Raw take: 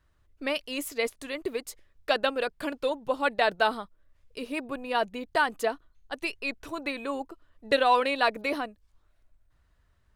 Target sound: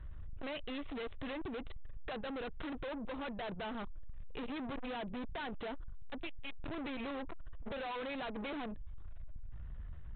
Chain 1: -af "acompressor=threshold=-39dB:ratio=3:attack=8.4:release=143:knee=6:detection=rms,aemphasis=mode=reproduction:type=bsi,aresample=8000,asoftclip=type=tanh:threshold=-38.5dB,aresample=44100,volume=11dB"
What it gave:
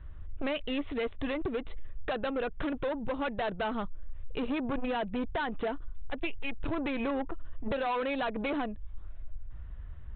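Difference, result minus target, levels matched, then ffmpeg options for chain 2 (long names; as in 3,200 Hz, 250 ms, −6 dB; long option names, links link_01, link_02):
soft clipping: distortion −6 dB
-af "acompressor=threshold=-39dB:ratio=3:attack=8.4:release=143:knee=6:detection=rms,aemphasis=mode=reproduction:type=bsi,aresample=8000,asoftclip=type=tanh:threshold=-50.5dB,aresample=44100,volume=11dB"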